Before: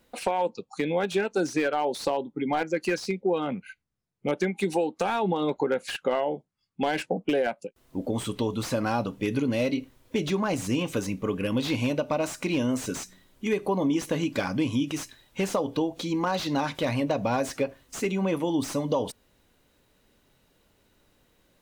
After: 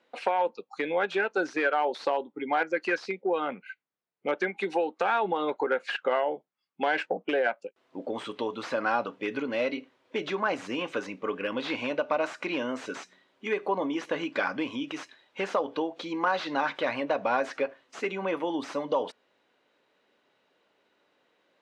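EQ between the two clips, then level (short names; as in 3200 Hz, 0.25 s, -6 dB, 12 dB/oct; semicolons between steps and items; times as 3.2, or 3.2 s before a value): dynamic EQ 1500 Hz, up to +6 dB, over -45 dBFS, Q 1.7; BPF 400–3300 Hz; 0.0 dB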